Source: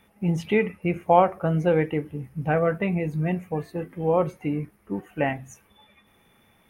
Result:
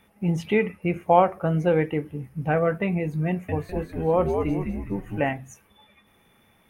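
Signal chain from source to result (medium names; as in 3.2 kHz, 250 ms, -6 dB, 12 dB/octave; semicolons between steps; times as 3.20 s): 3.28–5.29 s: frequency-shifting echo 204 ms, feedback 43%, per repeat -89 Hz, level -4 dB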